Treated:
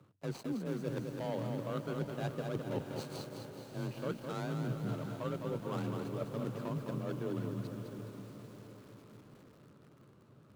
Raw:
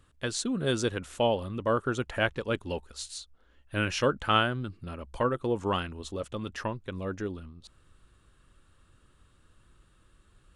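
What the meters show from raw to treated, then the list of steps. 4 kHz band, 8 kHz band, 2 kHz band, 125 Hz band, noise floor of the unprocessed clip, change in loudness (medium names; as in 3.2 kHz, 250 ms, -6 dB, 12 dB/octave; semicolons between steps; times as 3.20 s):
-16.5 dB, -15.5 dB, -16.0 dB, -3.0 dB, -64 dBFS, -9.0 dB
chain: median filter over 25 samples; high-pass 84 Hz 24 dB/octave; reverse; compression 12:1, threshold -41 dBFS, peak gain reduction 21 dB; reverse; dynamic bell 120 Hz, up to +4 dB, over -59 dBFS, Q 0.93; in parallel at -7.5 dB: one-sided clip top -42 dBFS; on the sum: frequency shift +28 Hz; echo that smears into a reverb 699 ms, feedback 51%, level -10 dB; bit-crushed delay 209 ms, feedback 55%, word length 10-bit, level -5 dB; trim +2.5 dB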